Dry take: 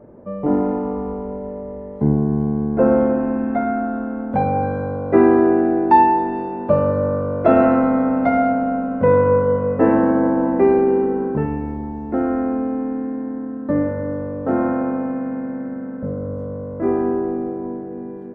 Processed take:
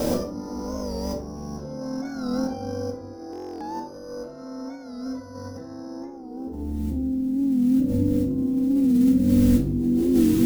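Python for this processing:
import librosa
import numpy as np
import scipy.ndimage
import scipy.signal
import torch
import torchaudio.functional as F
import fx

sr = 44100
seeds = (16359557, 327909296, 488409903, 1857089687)

y = fx.peak_eq(x, sr, hz=180.0, db=-6.5, octaves=1.0)
y = (np.kron(y[::8], np.eye(8)[0]) * 8)[:len(y)]
y = fx.stretch_vocoder_free(y, sr, factor=0.57)
y = fx.filter_sweep_lowpass(y, sr, from_hz=1700.0, to_hz=200.0, start_s=5.94, end_s=6.95, q=1.1)
y = fx.quant_dither(y, sr, seeds[0], bits=10, dither='triangular')
y = fx.peak_eq(y, sr, hz=67.0, db=3.5, octaves=0.71)
y = fx.over_compress(y, sr, threshold_db=-42.0, ratio=-1.0)
y = fx.echo_stepped(y, sr, ms=226, hz=190.0, octaves=0.7, feedback_pct=70, wet_db=-9.0)
y = fx.room_shoebox(y, sr, seeds[1], volume_m3=550.0, walls='furnished', distance_m=2.1)
y = fx.buffer_glitch(y, sr, at_s=(3.31,), block=1024, repeats=12)
y = fx.record_warp(y, sr, rpm=45.0, depth_cents=100.0)
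y = y * 10.0 ** (6.5 / 20.0)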